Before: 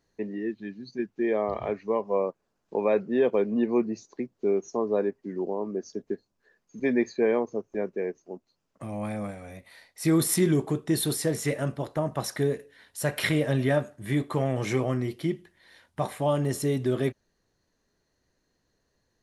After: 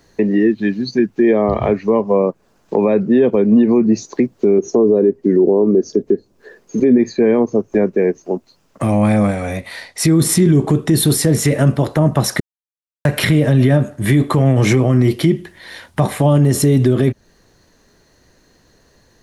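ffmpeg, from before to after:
ffmpeg -i in.wav -filter_complex "[0:a]asettb=1/sr,asplit=3[link_01][link_02][link_03];[link_01]atrim=end=4.584[link_04];[link_02]atrim=start=4.58:end=6.98,asetpts=PTS-STARTPTS,afade=type=in:duration=0.004:curve=qsin,afade=type=out:start_time=2.396:duration=0.004:curve=qsin,equalizer=frequency=410:width_type=o:width=1:gain=10[link_05];[link_03]atrim=start=6.976[link_06];[link_04][link_05]acrossfade=duration=0.004:curve1=hsin:curve2=qsin[link_07];[link_07][link_06]acrossfade=duration=0.004:curve1=qsin:curve2=hsin,asettb=1/sr,asplit=3[link_08][link_09][link_10];[link_08]atrim=end=8.924[link_11];[link_09]atrim=start=8.92:end=10.71,asetpts=PTS-STARTPTS,afade=type=in:duration=0.004:curve=qsin,afade=type=out:start_time=1.786:duration=0.004:curve=qsin,lowpass=10000[link_12];[link_10]atrim=start=10.706[link_13];[link_11][link_12]acrossfade=duration=0.004:curve1=hsin:curve2=qsin[link_14];[link_14][link_13]acrossfade=duration=0.004:curve1=qsin:curve2=hsin,asplit=3[link_15][link_16][link_17];[link_15]atrim=end=12.4,asetpts=PTS-STARTPTS,afade=type=out:start_time=12.396:duration=0.004:curve=hsin[link_18];[link_16]atrim=start=12.4:end=13.05,asetpts=PTS-STARTPTS,volume=0[link_19];[link_17]atrim=start=13.05,asetpts=PTS-STARTPTS,afade=type=in:duration=0.004:curve=hsin[link_20];[link_18][link_19][link_20]concat=n=3:v=0:a=1,acrossover=split=310[link_21][link_22];[link_22]acompressor=threshold=-38dB:ratio=3[link_23];[link_21][link_23]amix=inputs=2:normalize=0,alimiter=level_in=24dB:limit=-1dB:release=50:level=0:latency=1,volume=-3.5dB" out.wav

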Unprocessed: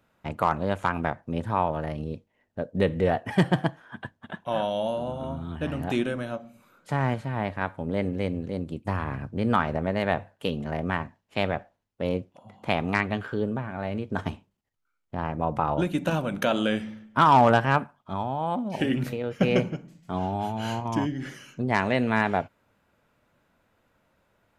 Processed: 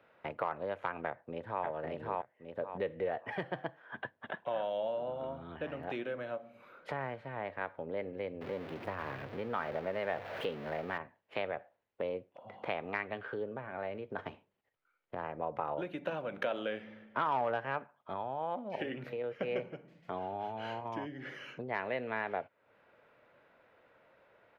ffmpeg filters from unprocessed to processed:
ffmpeg -i in.wav -filter_complex "[0:a]asplit=2[link_01][link_02];[link_02]afade=type=in:start_time=1.07:duration=0.01,afade=type=out:start_time=1.65:duration=0.01,aecho=0:1:560|1120|1680:1|0.2|0.04[link_03];[link_01][link_03]amix=inputs=2:normalize=0,asettb=1/sr,asplit=3[link_04][link_05][link_06];[link_04]atrim=end=8.414[link_07];[link_05]atrim=start=8.41:end=10.98,asetpts=PTS-STARTPTS,afade=type=in:duration=0.004:curve=qsin,afade=type=out:start_time=2.566:duration=0.004:curve=qsin,aeval=exprs='val(0)+0.5*0.0335*sgn(val(0))':channel_layout=same[link_08];[link_06]atrim=start=10.976[link_09];[link_07][link_08]acrossfade=duration=0.004:curve1=hsin:curve2=qsin[link_10];[link_10][link_09]acrossfade=duration=0.004:curve1=qsin:curve2=hsin,equalizer=frequency=125:width_type=o:width=1:gain=8,equalizer=frequency=500:width_type=o:width=1:gain=7,equalizer=frequency=2000:width_type=o:width=1:gain=5,equalizer=frequency=8000:width_type=o:width=1:gain=-9,acompressor=threshold=-39dB:ratio=2.5,acrossover=split=320 4600:gain=0.178 1 0.224[link_11][link_12][link_13];[link_11][link_12][link_13]amix=inputs=3:normalize=0,volume=1dB" out.wav

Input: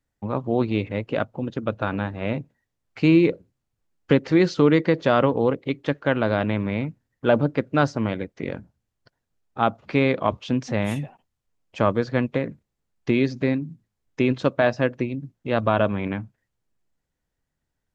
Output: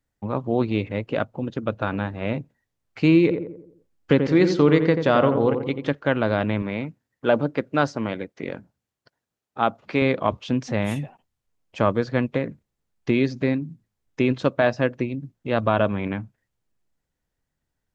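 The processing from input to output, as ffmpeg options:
ffmpeg -i in.wav -filter_complex "[0:a]asettb=1/sr,asplit=3[link_01][link_02][link_03];[link_01]atrim=end=3.224[link_04];[link_02]atrim=start=3.22:end=5.95,asetpts=PTS-STARTPTS,afade=type=in:duration=0.004:curve=qsin,afade=type=out:start_time=2.726:duration=0.004:curve=qsin,asplit=2[link_05][link_06];[link_06]adelay=87,lowpass=frequency=1200:poles=1,volume=-6dB,asplit=2[link_07][link_08];[link_08]adelay=87,lowpass=frequency=1200:poles=1,volume=0.48,asplit=2[link_09][link_10];[link_10]adelay=87,lowpass=frequency=1200:poles=1,volume=0.48,asplit=2[link_11][link_12];[link_12]adelay=87,lowpass=frequency=1200:poles=1,volume=0.48,asplit=2[link_13][link_14];[link_14]adelay=87,lowpass=frequency=1200:poles=1,volume=0.48,asplit=2[link_15][link_16];[link_16]adelay=87,lowpass=frequency=1200:poles=1,volume=0.48[link_17];[link_05][link_07][link_09][link_11][link_13][link_15][link_17]amix=inputs=7:normalize=0,atrim=end_sample=120393[link_18];[link_03]atrim=start=5.946[link_19];[link_04][link_18]acrossfade=duration=0.004:curve1=hsin:curve2=qsin[link_20];[link_20][link_19]acrossfade=duration=0.004:curve1=qsin:curve2=hsin,asettb=1/sr,asplit=3[link_21][link_22][link_23];[link_21]atrim=end=6.624[link_24];[link_22]atrim=start=6.62:end=10.02,asetpts=PTS-STARTPTS,afade=type=in:duration=0.004:curve=qsin,afade=type=out:start_time=3.396:duration=0.004:curve=qsin,highpass=frequency=200:poles=1[link_25];[link_23]atrim=start=10.016[link_26];[link_24][link_25]acrossfade=duration=0.004:curve1=hsin:curve2=qsin[link_27];[link_27][link_26]acrossfade=duration=0.004:curve1=qsin:curve2=hsin" out.wav

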